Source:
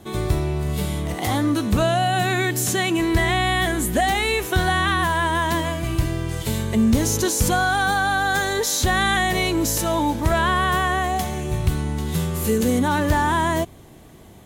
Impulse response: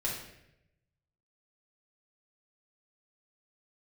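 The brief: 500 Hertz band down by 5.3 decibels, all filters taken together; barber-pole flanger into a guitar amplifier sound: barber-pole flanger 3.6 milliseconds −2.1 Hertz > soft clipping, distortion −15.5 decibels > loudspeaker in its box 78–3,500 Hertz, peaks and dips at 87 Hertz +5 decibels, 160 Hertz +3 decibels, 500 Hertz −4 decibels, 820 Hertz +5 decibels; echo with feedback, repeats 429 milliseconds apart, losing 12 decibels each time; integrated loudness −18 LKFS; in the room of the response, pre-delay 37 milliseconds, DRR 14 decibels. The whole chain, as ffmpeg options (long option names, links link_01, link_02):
-filter_complex "[0:a]equalizer=frequency=500:width_type=o:gain=-8,aecho=1:1:429|858|1287:0.251|0.0628|0.0157,asplit=2[link_01][link_02];[1:a]atrim=start_sample=2205,adelay=37[link_03];[link_02][link_03]afir=irnorm=-1:irlink=0,volume=-18.5dB[link_04];[link_01][link_04]amix=inputs=2:normalize=0,asplit=2[link_05][link_06];[link_06]adelay=3.6,afreqshift=-2.1[link_07];[link_05][link_07]amix=inputs=2:normalize=1,asoftclip=threshold=-18dB,highpass=78,equalizer=frequency=87:width_type=q:width=4:gain=5,equalizer=frequency=160:width_type=q:width=4:gain=3,equalizer=frequency=500:width_type=q:width=4:gain=-4,equalizer=frequency=820:width_type=q:width=4:gain=5,lowpass=frequency=3500:width=0.5412,lowpass=frequency=3500:width=1.3066,volume=8dB"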